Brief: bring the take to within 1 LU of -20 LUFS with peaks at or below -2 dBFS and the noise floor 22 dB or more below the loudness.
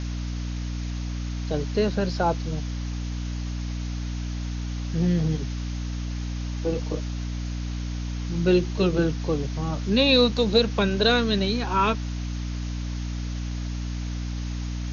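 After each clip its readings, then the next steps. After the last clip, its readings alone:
hum 60 Hz; harmonics up to 300 Hz; hum level -27 dBFS; noise floor -30 dBFS; noise floor target -48 dBFS; loudness -26.0 LUFS; peak -7.0 dBFS; loudness target -20.0 LUFS
-> notches 60/120/180/240/300 Hz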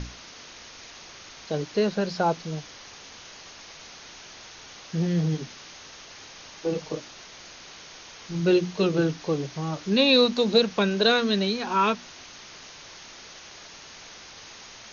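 hum none; noise floor -46 dBFS; noise floor target -47 dBFS
-> noise print and reduce 6 dB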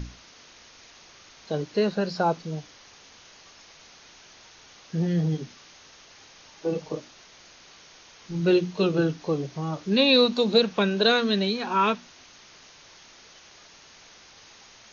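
noise floor -52 dBFS; loudness -24.5 LUFS; peak -8.0 dBFS; loudness target -20.0 LUFS
-> gain +4.5 dB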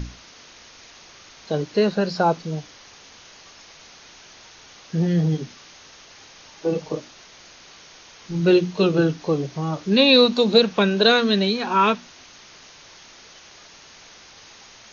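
loudness -20.0 LUFS; peak -3.5 dBFS; noise floor -47 dBFS

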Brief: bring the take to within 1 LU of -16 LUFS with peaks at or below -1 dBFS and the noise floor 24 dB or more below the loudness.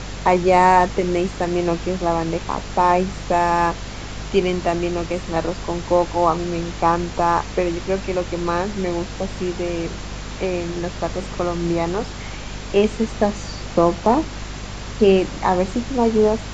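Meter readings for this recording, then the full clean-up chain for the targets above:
hum 50 Hz; harmonics up to 250 Hz; hum level -31 dBFS; noise floor -32 dBFS; noise floor target -45 dBFS; loudness -20.5 LUFS; peak -2.5 dBFS; loudness target -16.0 LUFS
-> notches 50/100/150/200/250 Hz; noise print and reduce 13 dB; gain +4.5 dB; limiter -1 dBFS

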